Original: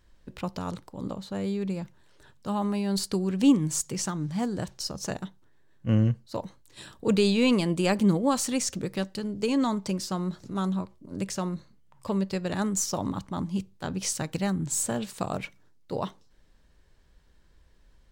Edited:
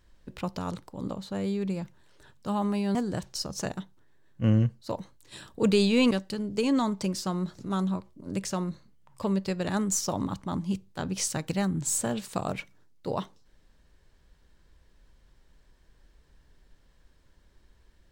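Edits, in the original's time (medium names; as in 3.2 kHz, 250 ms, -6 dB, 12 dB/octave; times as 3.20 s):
2.95–4.40 s: delete
7.56–8.96 s: delete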